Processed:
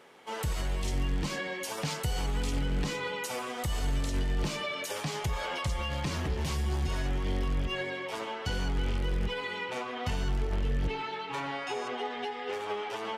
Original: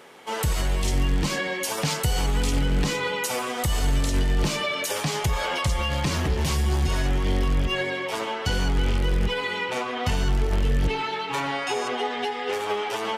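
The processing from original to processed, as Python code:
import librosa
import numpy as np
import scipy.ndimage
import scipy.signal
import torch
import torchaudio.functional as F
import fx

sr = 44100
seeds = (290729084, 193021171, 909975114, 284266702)

y = fx.high_shelf(x, sr, hz=7000.0, db=fx.steps((0.0, -4.5), (10.44, -9.5)))
y = y * librosa.db_to_amplitude(-7.5)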